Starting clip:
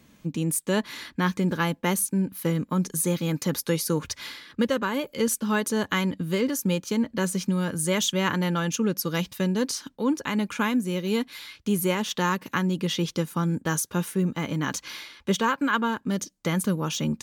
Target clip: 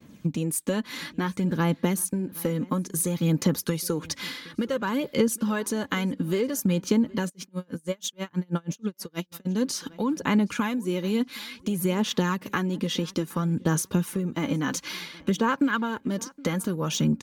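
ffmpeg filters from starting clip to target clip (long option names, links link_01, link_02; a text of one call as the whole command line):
ffmpeg -i in.wav -filter_complex "[0:a]agate=range=-33dB:threshold=-53dB:ratio=3:detection=peak,highpass=frequency=250:poles=1,lowshelf=frequency=330:gain=11.5,acompressor=threshold=-25dB:ratio=6,aphaser=in_gain=1:out_gain=1:delay=4:decay=0.41:speed=0.58:type=sinusoidal,asplit=2[link_01][link_02];[link_02]adelay=769,lowpass=frequency=3800:poles=1,volume=-22.5dB,asplit=2[link_03][link_04];[link_04]adelay=769,lowpass=frequency=3800:poles=1,volume=0.31[link_05];[link_01][link_03][link_05]amix=inputs=3:normalize=0,asplit=3[link_06][link_07][link_08];[link_06]afade=type=out:start_time=7.28:duration=0.02[link_09];[link_07]aeval=exprs='val(0)*pow(10,-38*(0.5-0.5*cos(2*PI*6.2*n/s))/20)':channel_layout=same,afade=type=in:start_time=7.28:duration=0.02,afade=type=out:start_time=9.45:duration=0.02[link_10];[link_08]afade=type=in:start_time=9.45:duration=0.02[link_11];[link_09][link_10][link_11]amix=inputs=3:normalize=0,volume=2dB" out.wav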